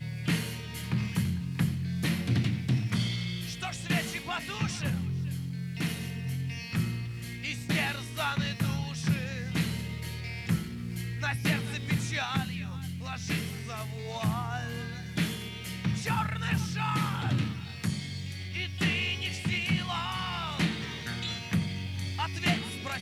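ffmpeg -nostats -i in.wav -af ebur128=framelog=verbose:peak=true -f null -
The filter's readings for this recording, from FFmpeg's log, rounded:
Integrated loudness:
  I:         -31.8 LUFS
  Threshold: -41.8 LUFS
Loudness range:
  LRA:         2.6 LU
  Threshold: -51.8 LUFS
  LRA low:   -33.2 LUFS
  LRA high:  -30.6 LUFS
True peak:
  Peak:      -13.4 dBFS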